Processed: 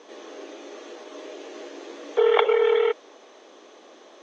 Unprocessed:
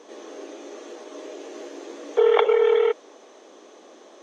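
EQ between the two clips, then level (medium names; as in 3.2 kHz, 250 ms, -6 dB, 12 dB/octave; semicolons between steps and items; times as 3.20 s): low-pass 4.3 kHz 12 dB/octave; tilt EQ +2 dB/octave; bass shelf 200 Hz +4 dB; 0.0 dB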